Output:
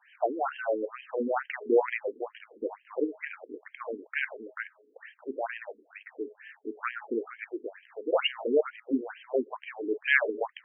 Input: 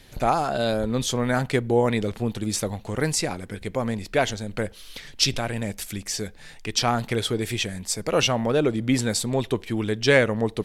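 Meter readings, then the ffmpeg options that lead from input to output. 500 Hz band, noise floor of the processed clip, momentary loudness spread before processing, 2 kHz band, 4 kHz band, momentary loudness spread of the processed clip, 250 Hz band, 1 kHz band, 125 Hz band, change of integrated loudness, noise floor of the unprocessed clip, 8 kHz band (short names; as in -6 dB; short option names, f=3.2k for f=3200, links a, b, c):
-5.5 dB, -67 dBFS, 9 LU, -3.0 dB, -13.5 dB, 16 LU, -10.0 dB, -8.0 dB, under -40 dB, -7.0 dB, -45 dBFS, under -40 dB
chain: -af "bandreject=f=211.2:t=h:w=4,bandreject=f=422.4:t=h:w=4,bandreject=f=633.6:t=h:w=4,bandreject=f=844.8:t=h:w=4,bandreject=f=1.056k:t=h:w=4,bandreject=f=1.2672k:t=h:w=4,afftfilt=real='re*between(b*sr/1024,320*pow(2300/320,0.5+0.5*sin(2*PI*2.2*pts/sr))/1.41,320*pow(2300/320,0.5+0.5*sin(2*PI*2.2*pts/sr))*1.41)':imag='im*between(b*sr/1024,320*pow(2300/320,0.5+0.5*sin(2*PI*2.2*pts/sr))/1.41,320*pow(2300/320,0.5+0.5*sin(2*PI*2.2*pts/sr))*1.41)':win_size=1024:overlap=0.75"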